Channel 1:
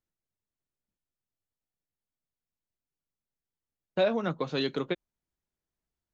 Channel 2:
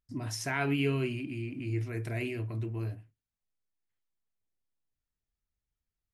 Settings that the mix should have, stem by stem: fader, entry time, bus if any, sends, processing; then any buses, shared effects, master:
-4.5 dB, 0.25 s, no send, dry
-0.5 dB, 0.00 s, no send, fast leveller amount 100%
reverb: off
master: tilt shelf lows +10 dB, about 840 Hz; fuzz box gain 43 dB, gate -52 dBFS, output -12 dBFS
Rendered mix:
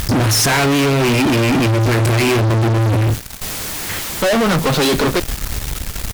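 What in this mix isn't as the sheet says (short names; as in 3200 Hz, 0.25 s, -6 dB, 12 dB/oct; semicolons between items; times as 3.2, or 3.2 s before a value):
stem 1 -4.5 dB -> +3.0 dB; master: missing tilt shelf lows +10 dB, about 840 Hz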